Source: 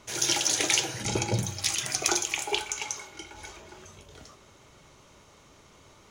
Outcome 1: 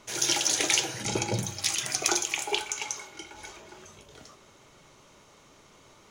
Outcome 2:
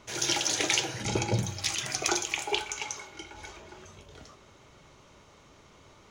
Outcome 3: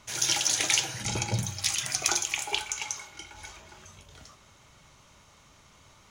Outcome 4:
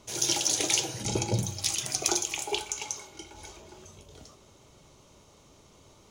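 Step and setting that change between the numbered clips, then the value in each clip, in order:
bell, frequency: 66, 12000, 390, 1700 Hz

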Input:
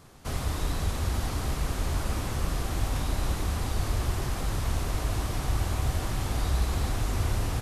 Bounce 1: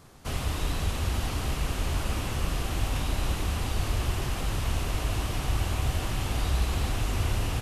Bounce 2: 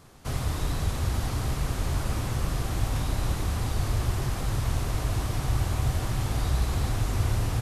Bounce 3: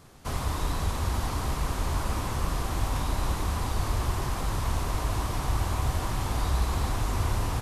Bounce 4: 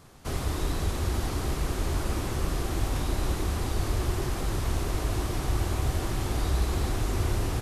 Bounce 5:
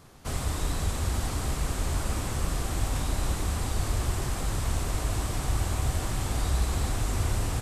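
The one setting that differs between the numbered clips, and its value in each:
dynamic EQ, frequency: 2800, 120, 1000, 360, 8000 Hz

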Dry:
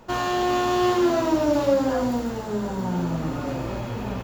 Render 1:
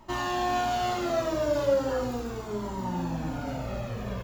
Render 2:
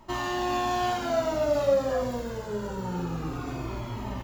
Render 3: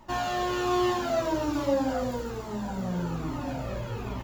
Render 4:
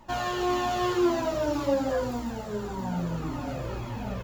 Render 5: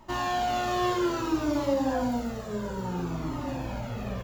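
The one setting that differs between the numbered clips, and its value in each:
cascading flanger, rate: 0.37, 0.25, 1.2, 1.8, 0.6 Hz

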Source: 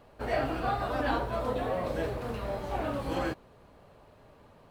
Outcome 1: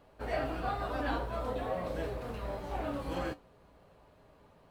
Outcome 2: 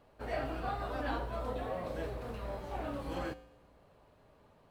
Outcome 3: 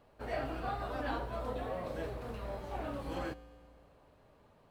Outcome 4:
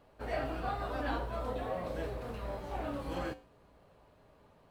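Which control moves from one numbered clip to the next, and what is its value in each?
resonator, decay: 0.17, 0.9, 2.1, 0.43 s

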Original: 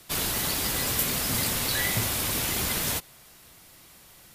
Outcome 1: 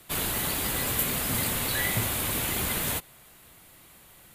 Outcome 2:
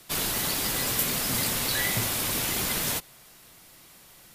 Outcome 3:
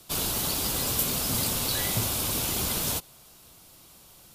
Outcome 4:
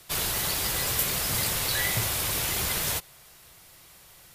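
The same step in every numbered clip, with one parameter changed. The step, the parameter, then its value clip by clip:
bell, frequency: 5400, 71, 1900, 250 Hz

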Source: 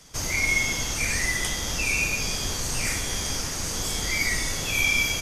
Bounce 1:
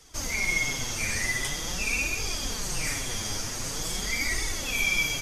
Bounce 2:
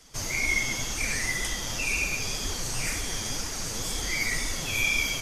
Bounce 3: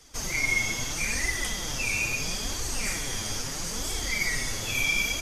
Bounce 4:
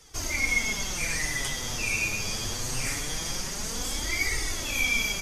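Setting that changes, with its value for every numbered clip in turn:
flange, rate: 0.45, 2, 0.76, 0.23 Hz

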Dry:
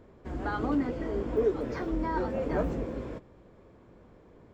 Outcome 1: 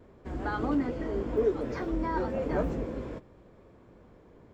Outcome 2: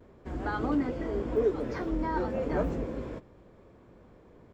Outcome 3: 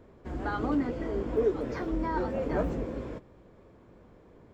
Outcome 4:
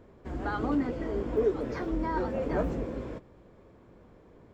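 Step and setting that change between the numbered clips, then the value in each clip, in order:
vibrato, rate: 0.63, 0.32, 3.1, 12 Hz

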